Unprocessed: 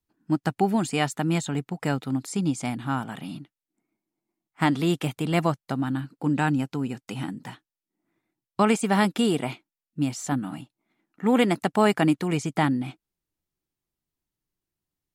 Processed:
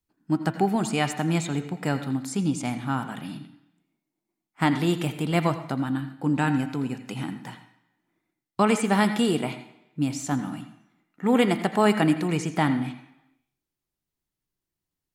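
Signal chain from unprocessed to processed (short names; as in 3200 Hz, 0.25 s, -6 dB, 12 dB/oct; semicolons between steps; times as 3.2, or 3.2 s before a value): de-hum 109.5 Hz, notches 36; on a send: reverb RT60 1.0 s, pre-delay 80 ms, DRR 10 dB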